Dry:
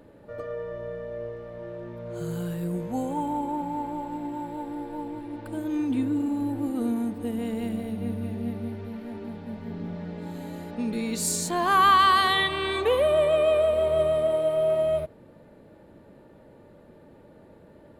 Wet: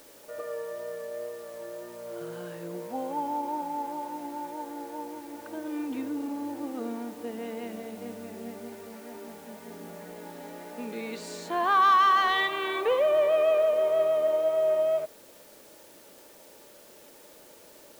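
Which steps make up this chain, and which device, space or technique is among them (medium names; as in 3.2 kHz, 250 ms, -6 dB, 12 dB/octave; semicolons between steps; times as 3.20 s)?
tape answering machine (band-pass 400–2800 Hz; saturation -13.5 dBFS, distortion -20 dB; wow and flutter 20 cents; white noise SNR 25 dB)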